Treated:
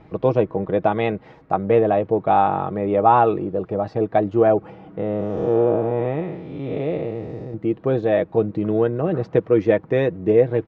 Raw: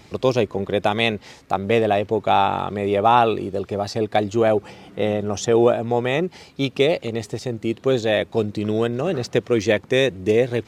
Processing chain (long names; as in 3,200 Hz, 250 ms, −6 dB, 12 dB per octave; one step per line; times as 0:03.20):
0:04.99–0:07.54: spectrum smeared in time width 286 ms
low-pass filter 1,300 Hz 12 dB per octave
comb filter 6.3 ms, depth 41%
level +1 dB